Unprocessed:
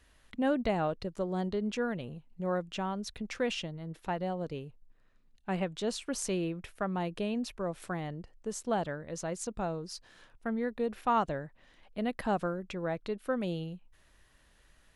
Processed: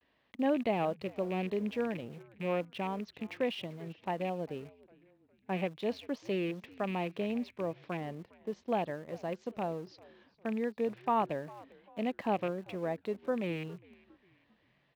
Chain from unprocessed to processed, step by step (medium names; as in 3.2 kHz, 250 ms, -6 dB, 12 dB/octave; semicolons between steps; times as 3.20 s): rattle on loud lows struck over -37 dBFS, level -30 dBFS; Bessel low-pass 2.7 kHz, order 8; peaking EQ 1.4 kHz -9 dB 0.36 oct; on a send: frequency-shifting echo 399 ms, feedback 45%, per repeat -100 Hz, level -19.5 dB; on the sum: vibrato 0.35 Hz 38 cents; in parallel at -9.5 dB: small samples zeroed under -42 dBFS; on the sum: high-pass 170 Hz 12 dB/octave; trim -2.5 dB